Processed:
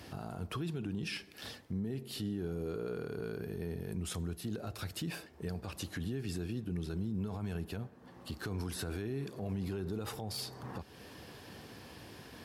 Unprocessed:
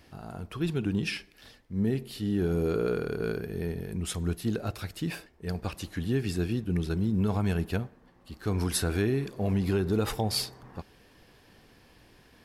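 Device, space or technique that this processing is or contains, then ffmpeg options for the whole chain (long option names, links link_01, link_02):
podcast mastering chain: -af "highpass=43,highpass=frequency=63:width=0.5412,highpass=frequency=63:width=1.3066,equalizer=frequency=2100:width_type=o:width=0.72:gain=-3,deesser=0.6,acompressor=threshold=-45dB:ratio=3,alimiter=level_in=13dB:limit=-24dB:level=0:latency=1:release=26,volume=-13dB,volume=8dB" -ar 44100 -c:a libmp3lame -b:a 96k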